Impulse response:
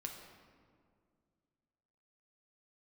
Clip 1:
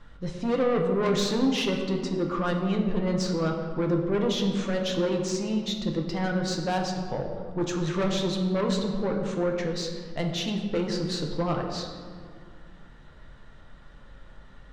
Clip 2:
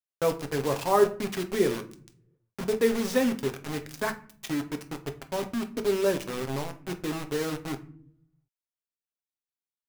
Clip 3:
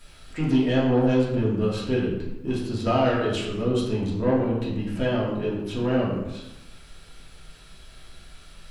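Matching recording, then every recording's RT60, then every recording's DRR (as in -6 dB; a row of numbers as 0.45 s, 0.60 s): 1; 2.1 s, no single decay rate, 1.0 s; 1.0 dB, 6.0 dB, -6.5 dB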